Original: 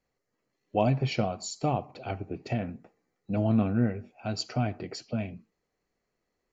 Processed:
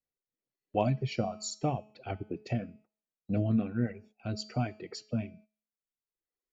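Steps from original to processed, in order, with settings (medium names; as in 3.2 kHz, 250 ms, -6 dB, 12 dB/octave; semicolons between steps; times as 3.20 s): reverb removal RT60 1.2 s; de-hum 213.8 Hz, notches 38; gate -54 dBFS, range -14 dB; rotary cabinet horn 1.2 Hz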